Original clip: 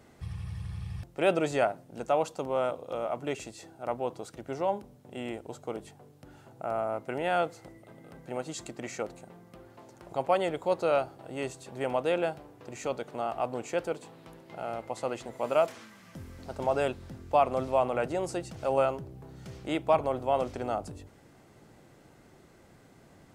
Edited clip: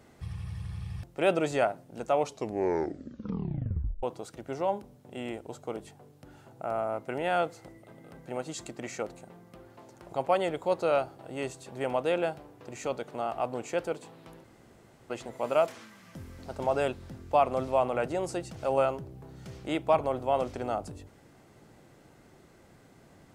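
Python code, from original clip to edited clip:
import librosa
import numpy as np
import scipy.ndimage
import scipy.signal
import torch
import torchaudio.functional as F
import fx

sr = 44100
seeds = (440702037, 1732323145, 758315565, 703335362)

y = fx.edit(x, sr, fx.tape_stop(start_s=2.1, length_s=1.93),
    fx.room_tone_fill(start_s=14.44, length_s=0.66), tone=tone)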